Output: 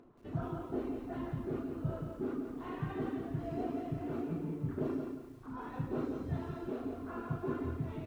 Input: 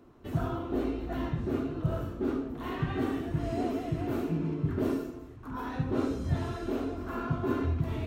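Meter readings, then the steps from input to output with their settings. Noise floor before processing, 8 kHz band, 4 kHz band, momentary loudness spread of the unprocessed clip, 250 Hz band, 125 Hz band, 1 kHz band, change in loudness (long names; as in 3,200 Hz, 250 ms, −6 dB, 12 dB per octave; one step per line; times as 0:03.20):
−46 dBFS, can't be measured, below −10 dB, 5 LU, −6.0 dB, −7.0 dB, −6.5 dB, −6.5 dB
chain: hum removal 283.9 Hz, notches 38
reverb reduction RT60 0.81 s
upward compression, threshold −51 dBFS
low-pass filter 1,500 Hz 6 dB per octave
parametric band 65 Hz −11.5 dB 0.85 octaves
double-tracking delay 34 ms −8 dB
feedback echo at a low word length 174 ms, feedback 35%, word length 10 bits, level −5.5 dB
level −5 dB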